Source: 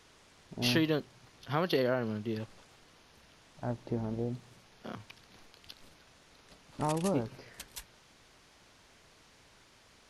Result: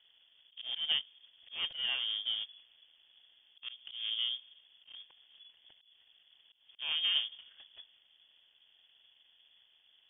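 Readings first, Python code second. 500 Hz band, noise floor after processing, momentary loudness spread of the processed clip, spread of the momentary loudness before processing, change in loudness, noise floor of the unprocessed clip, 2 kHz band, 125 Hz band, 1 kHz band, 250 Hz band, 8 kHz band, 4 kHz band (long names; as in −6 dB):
below −30 dB, −68 dBFS, 21 LU, 23 LU, 0.0 dB, −62 dBFS, −2.0 dB, below −35 dB, −17.5 dB, below −35 dB, below −30 dB, +10.0 dB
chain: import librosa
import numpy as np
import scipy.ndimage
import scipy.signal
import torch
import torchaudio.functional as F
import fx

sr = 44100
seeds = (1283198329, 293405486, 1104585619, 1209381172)

y = scipy.ndimage.median_filter(x, 41, mode='constant')
y = fx.freq_invert(y, sr, carrier_hz=3400)
y = fx.auto_swell(y, sr, attack_ms=174.0)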